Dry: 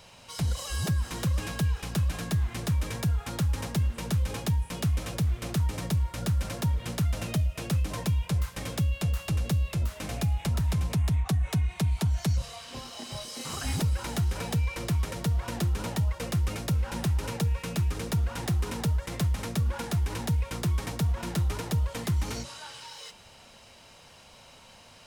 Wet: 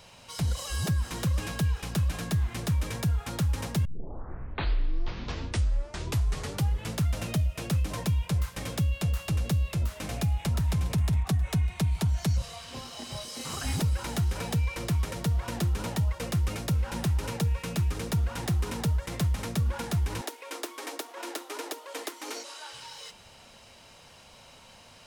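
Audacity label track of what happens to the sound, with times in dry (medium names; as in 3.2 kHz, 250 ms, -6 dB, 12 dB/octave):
3.850000	3.850000	tape start 3.22 s
10.300000	10.810000	echo throw 410 ms, feedback 70%, level -16.5 dB
20.210000	22.730000	brick-wall FIR high-pass 260 Hz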